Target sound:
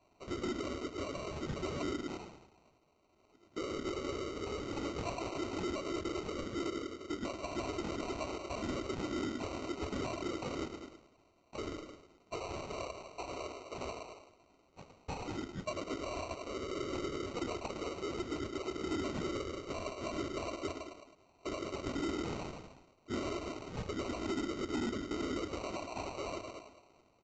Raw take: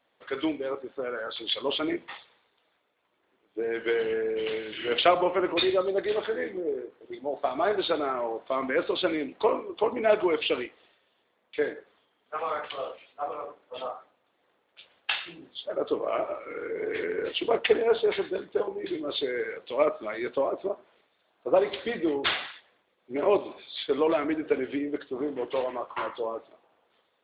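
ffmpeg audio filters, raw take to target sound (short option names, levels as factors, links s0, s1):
-filter_complex "[0:a]acompressor=threshold=0.0398:ratio=6,asoftclip=type=tanh:threshold=0.0398,asplit=2[s0][s1];[s1]aecho=0:1:105|210|315|420|525:0.398|0.159|0.0637|0.0255|0.0102[s2];[s0][s2]amix=inputs=2:normalize=0,acrossover=split=240|3000[s3][s4][s5];[s4]acompressor=threshold=0.00794:ratio=6[s6];[s3][s6][s5]amix=inputs=3:normalize=0,highshelf=f=3600:g=-9.5,afftfilt=real='hypot(re,im)*cos(2*PI*random(0))':imag='hypot(re,im)*sin(2*PI*random(1))':win_size=512:overlap=0.75,equalizer=f=79:w=0.69:g=11.5,aecho=1:1:3.1:0.51,acrusher=samples=26:mix=1:aa=0.000001,aresample=16000,asoftclip=type=hard:threshold=0.0112,aresample=44100,volume=2.37"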